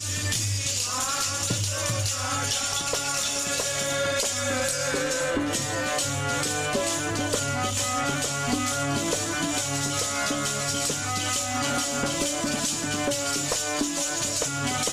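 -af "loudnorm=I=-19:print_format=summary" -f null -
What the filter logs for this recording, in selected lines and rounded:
Input Integrated:    -25.2 LUFS
Input True Peak:     -13.2 dBTP
Input LRA:             0.6 LU
Input Threshold:     -35.2 LUFS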